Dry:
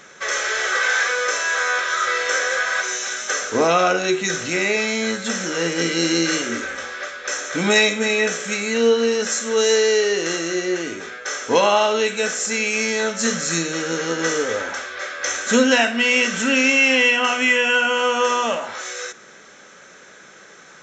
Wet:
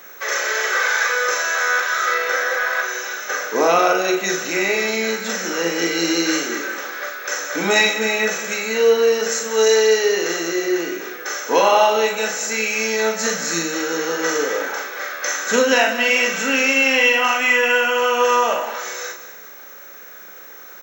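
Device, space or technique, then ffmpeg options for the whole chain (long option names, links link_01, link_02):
old television with a line whistle: -filter_complex "[0:a]asettb=1/sr,asplit=3[link_01][link_02][link_03];[link_01]atrim=end=2.144[link_04];[link_02]atrim=start=2.14:end=3.56,asetpts=PTS-STARTPTS,afade=type=in:duration=0.004:curve=qsin,afade=type=out:start_time=1.416:duration=0.004:curve=qsin,aemphasis=mode=reproduction:type=50fm[link_05];[link_03]atrim=start=3.556[link_06];[link_04][link_05]acrossfade=duration=0.004:curve1=hsin:curve2=qsin[link_07];[link_07][link_06]acrossfade=duration=0.004:curve1=qsin:curve2=hsin,highpass=frequency=210:width=0.5412,highpass=frequency=210:width=1.3066,equalizer=frequency=240:width_type=q:width=4:gain=-6,equalizer=frequency=860:width_type=q:width=4:gain=3,equalizer=frequency=3300:width_type=q:width=4:gain=-5,lowpass=frequency=7400:width=0.5412,lowpass=frequency=7400:width=1.3066,aeval=exprs='val(0)+0.00708*sin(2*PI*15734*n/s)':channel_layout=same,asplit=2[link_08][link_09];[link_09]adelay=41,volume=-4.5dB[link_10];[link_08][link_10]amix=inputs=2:normalize=0,aecho=1:1:192|384|576|768:0.224|0.0895|0.0358|0.0143"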